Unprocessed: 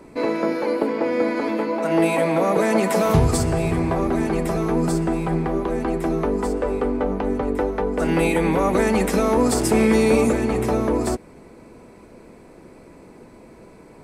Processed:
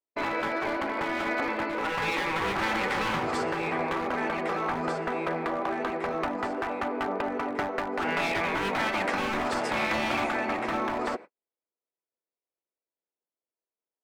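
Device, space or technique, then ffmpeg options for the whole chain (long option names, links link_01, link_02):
walkie-talkie: -af "highpass=570,lowpass=2300,equalizer=frequency=1000:width_type=o:width=0.27:gain=-3.5,asoftclip=type=hard:threshold=-24dB,agate=range=-53dB:threshold=-41dB:ratio=16:detection=peak,afftfilt=real='re*lt(hypot(re,im),0.158)':imag='im*lt(hypot(re,im),0.158)':win_size=1024:overlap=0.75,volume=4.5dB"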